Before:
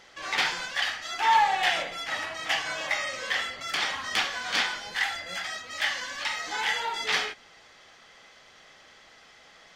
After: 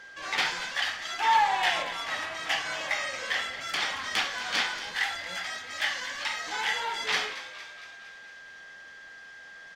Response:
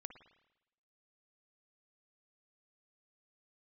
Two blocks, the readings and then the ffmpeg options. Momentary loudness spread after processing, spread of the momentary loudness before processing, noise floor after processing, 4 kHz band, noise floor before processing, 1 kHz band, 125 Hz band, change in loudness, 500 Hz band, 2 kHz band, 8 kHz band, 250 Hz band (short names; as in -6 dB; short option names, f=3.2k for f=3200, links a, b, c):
20 LU, 8 LU, -48 dBFS, -1.0 dB, -54 dBFS, -1.0 dB, -1.5 dB, -1.0 dB, -1.5 dB, -1.0 dB, -1.0 dB, -1.5 dB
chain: -filter_complex "[0:a]aeval=exprs='val(0)+0.00631*sin(2*PI*1600*n/s)':c=same,asplit=7[a][b][c][d][e][f][g];[b]adelay=230,afreqshift=87,volume=-13.5dB[h];[c]adelay=460,afreqshift=174,volume=-18.2dB[i];[d]adelay=690,afreqshift=261,volume=-23dB[j];[e]adelay=920,afreqshift=348,volume=-27.7dB[k];[f]adelay=1150,afreqshift=435,volume=-32.4dB[l];[g]adelay=1380,afreqshift=522,volume=-37.2dB[m];[a][h][i][j][k][l][m]amix=inputs=7:normalize=0,volume=-1.5dB"